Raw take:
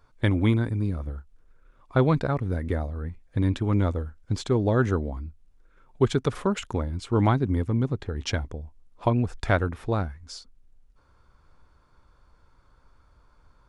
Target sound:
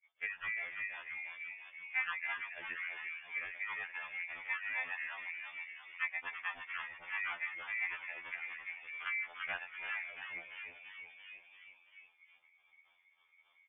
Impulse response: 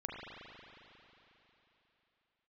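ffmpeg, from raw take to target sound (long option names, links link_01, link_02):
-filter_complex "[0:a]agate=range=-33dB:threshold=-48dB:ratio=3:detection=peak,acrossover=split=430[link_01][link_02];[link_01]aeval=exprs='val(0)*(1-1/2+1/2*cos(2*PI*3.6*n/s))':channel_layout=same[link_03];[link_02]aeval=exprs='val(0)*(1-1/2-1/2*cos(2*PI*3.6*n/s))':channel_layout=same[link_04];[link_03][link_04]amix=inputs=2:normalize=0,acrossover=split=150|430|930[link_05][link_06][link_07][link_08];[link_05]acompressor=threshold=-34dB:ratio=4[link_09];[link_06]acompressor=threshold=-38dB:ratio=4[link_10];[link_07]acompressor=threshold=-39dB:ratio=4[link_11];[link_08]acompressor=threshold=-48dB:ratio=4[link_12];[link_09][link_10][link_11][link_12]amix=inputs=4:normalize=0,aeval=exprs='val(0)*sin(2*PI*1400*n/s)':channel_layout=same,asplit=8[link_13][link_14][link_15][link_16][link_17][link_18][link_19][link_20];[link_14]adelay=339,afreqshift=-47,volume=-6.5dB[link_21];[link_15]adelay=678,afreqshift=-94,volume=-11.9dB[link_22];[link_16]adelay=1017,afreqshift=-141,volume=-17.2dB[link_23];[link_17]adelay=1356,afreqshift=-188,volume=-22.6dB[link_24];[link_18]adelay=1695,afreqshift=-235,volume=-27.9dB[link_25];[link_19]adelay=2034,afreqshift=-282,volume=-33.3dB[link_26];[link_20]adelay=2373,afreqshift=-329,volume=-38.6dB[link_27];[link_13][link_21][link_22][link_23][link_24][link_25][link_26][link_27]amix=inputs=8:normalize=0,lowpass=frequency=3100:width_type=q:width=0.5098,lowpass=frequency=3100:width_type=q:width=0.6013,lowpass=frequency=3100:width_type=q:width=0.9,lowpass=frequency=3100:width_type=q:width=2.563,afreqshift=-3600,acrossover=split=380|1700[link_28][link_29][link_30];[link_30]acompressor=threshold=-55dB:ratio=4[link_31];[link_28][link_29][link_31]amix=inputs=3:normalize=0,afftfilt=real='re*2*eq(mod(b,4),0)':imag='im*2*eq(mod(b,4),0)':win_size=2048:overlap=0.75,volume=6.5dB"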